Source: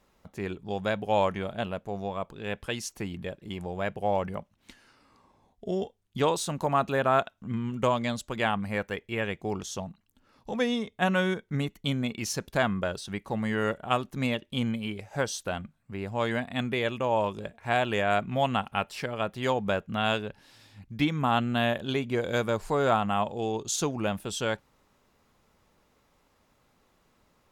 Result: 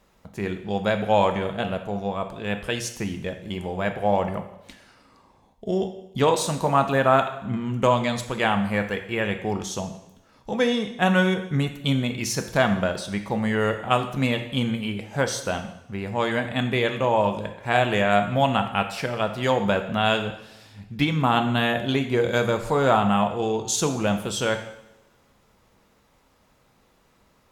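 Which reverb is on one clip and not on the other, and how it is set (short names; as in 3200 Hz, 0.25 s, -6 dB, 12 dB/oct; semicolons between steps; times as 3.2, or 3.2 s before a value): two-slope reverb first 0.8 s, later 2.2 s, from -24 dB, DRR 6 dB; gain +4.5 dB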